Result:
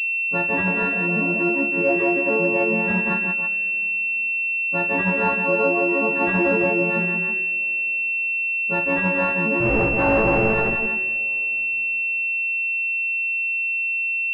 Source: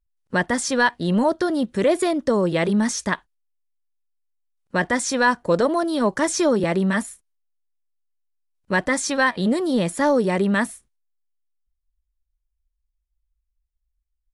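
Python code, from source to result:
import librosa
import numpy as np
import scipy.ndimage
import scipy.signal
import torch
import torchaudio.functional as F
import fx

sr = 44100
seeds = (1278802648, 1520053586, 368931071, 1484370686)

p1 = fx.freq_snap(x, sr, grid_st=4)
p2 = fx.spec_repair(p1, sr, seeds[0], start_s=0.69, length_s=0.68, low_hz=450.0, high_hz=960.0, source='after')
p3 = fx.resample_bad(p2, sr, factor=4, down='filtered', up='zero_stuff', at=(9.6, 10.54))
p4 = p3 + fx.echo_multitap(p3, sr, ms=(43, 175, 323), db=(-8.5, -6.0, -8.5), dry=0)
p5 = fx.rev_double_slope(p4, sr, seeds[1], early_s=0.28, late_s=3.9, knee_db=-18, drr_db=13.0)
p6 = fx.pwm(p5, sr, carrier_hz=2700.0)
y = p6 * librosa.db_to_amplitude(-5.0)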